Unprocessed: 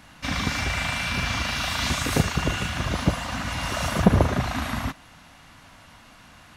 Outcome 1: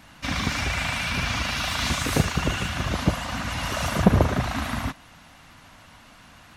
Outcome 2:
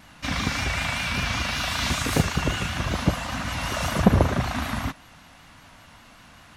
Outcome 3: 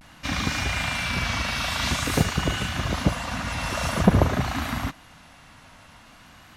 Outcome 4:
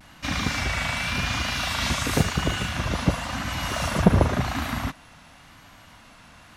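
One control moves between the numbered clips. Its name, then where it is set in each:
vibrato, rate: 14 Hz, 5.2 Hz, 0.49 Hz, 0.92 Hz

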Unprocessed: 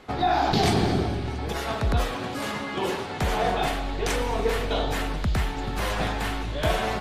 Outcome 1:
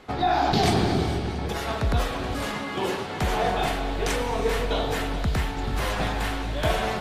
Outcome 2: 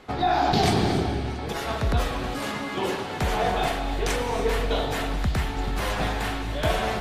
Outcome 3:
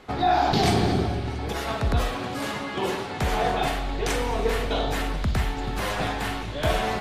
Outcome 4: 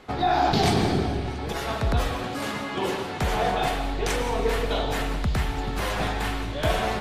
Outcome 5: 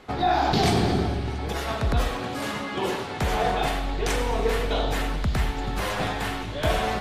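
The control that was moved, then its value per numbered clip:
gated-style reverb, gate: 490 ms, 320 ms, 80 ms, 200 ms, 120 ms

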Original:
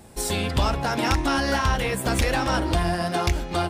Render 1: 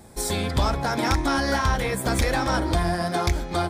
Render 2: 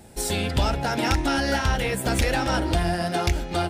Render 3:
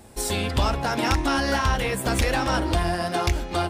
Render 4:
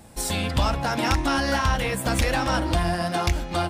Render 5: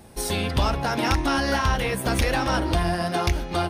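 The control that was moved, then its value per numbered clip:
band-stop, frequency: 2.8 kHz, 1.1 kHz, 160 Hz, 400 Hz, 7.5 kHz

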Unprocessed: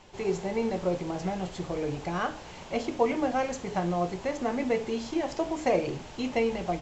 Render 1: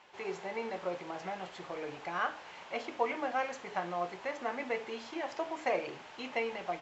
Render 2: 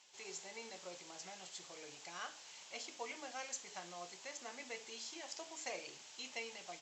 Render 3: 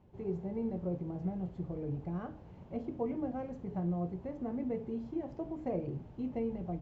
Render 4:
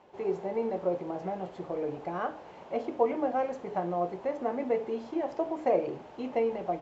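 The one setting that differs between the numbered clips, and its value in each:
band-pass filter, frequency: 1.6 kHz, 7.9 kHz, 110 Hz, 580 Hz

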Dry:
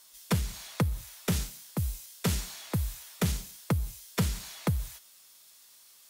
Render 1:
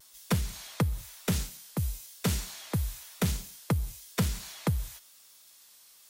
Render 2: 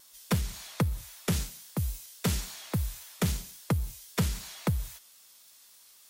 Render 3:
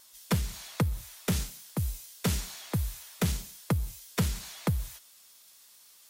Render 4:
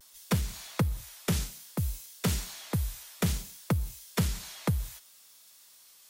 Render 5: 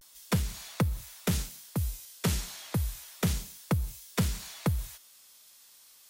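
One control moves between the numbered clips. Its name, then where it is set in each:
vibrato, rate: 1 Hz, 3.7 Hz, 9.4 Hz, 0.61 Hz, 0.31 Hz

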